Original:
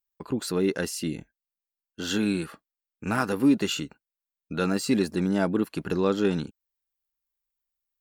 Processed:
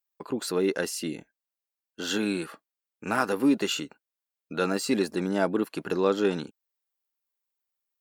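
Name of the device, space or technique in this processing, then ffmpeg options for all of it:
filter by subtraction: -filter_complex "[0:a]asplit=2[a][b];[b]lowpass=520,volume=-1[c];[a][c]amix=inputs=2:normalize=0"

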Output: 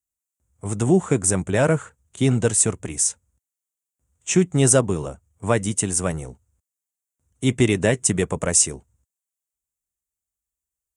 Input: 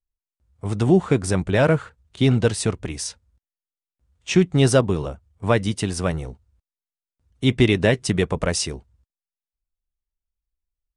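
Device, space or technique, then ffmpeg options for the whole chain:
budget condenser microphone: -af "highpass=81,highshelf=f=5.8k:t=q:w=3:g=8.5,volume=-1dB"

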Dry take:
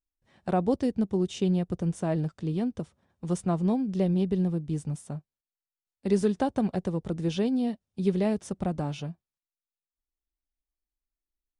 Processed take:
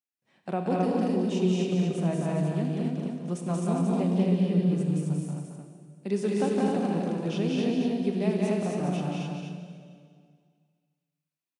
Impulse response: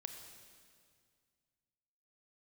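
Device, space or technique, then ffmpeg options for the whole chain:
stadium PA: -filter_complex "[0:a]highpass=f=140:w=0.5412,highpass=f=140:w=1.3066,equalizer=f=2.5k:t=o:w=0.37:g=6,aecho=1:1:183.7|262.4:0.794|0.794,aecho=1:1:224:0.562[a];[1:a]atrim=start_sample=2205[b];[a][b]afir=irnorm=-1:irlink=0"

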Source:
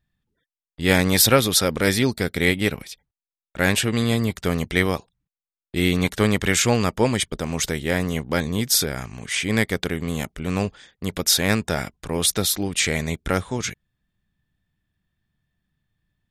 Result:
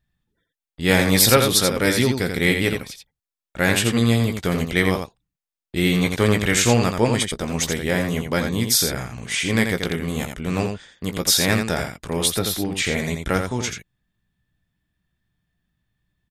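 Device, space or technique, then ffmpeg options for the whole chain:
slapback doubling: -filter_complex "[0:a]asplit=3[a][b][c];[b]adelay=17,volume=-9dB[d];[c]adelay=85,volume=-6dB[e];[a][d][e]amix=inputs=3:normalize=0,asettb=1/sr,asplit=3[f][g][h];[f]atrim=end=12.284[i];[g]atrim=start=12.28:end=12.98,asetpts=PTS-STARTPTS,afade=t=in:d=0.004:c=qsin,afade=t=out:st=0.696:d=0.004:c=qsin,equalizer=f=7.8k:t=o:w=1.7:g=-7[j];[h]atrim=start=12.976[k];[i][j]acrossfade=d=0.004:c1=hsin:c2=qsin[l];[l][k]acrossfade=d=0.004:c1=qsin:c2=hsin"

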